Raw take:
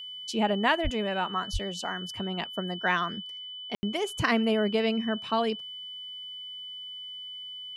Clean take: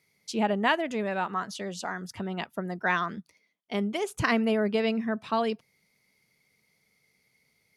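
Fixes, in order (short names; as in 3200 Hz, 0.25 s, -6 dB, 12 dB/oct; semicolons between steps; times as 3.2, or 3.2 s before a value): notch 3000 Hz, Q 30; de-plosive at 0.83/1.52; room tone fill 3.75–3.83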